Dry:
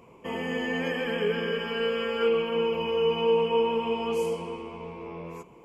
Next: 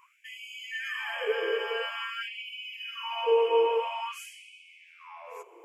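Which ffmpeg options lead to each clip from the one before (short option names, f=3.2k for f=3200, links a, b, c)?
-af "equalizer=f=4.2k:t=o:w=0.76:g=-6.5,afftfilt=real='re*gte(b*sr/1024,330*pow(2200/330,0.5+0.5*sin(2*PI*0.49*pts/sr)))':imag='im*gte(b*sr/1024,330*pow(2200/330,0.5+0.5*sin(2*PI*0.49*pts/sr)))':win_size=1024:overlap=0.75,volume=1dB"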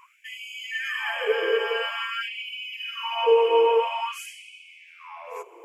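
-af "aphaser=in_gain=1:out_gain=1:delay=4.5:decay=0.22:speed=0.93:type=sinusoidal,volume=5dB"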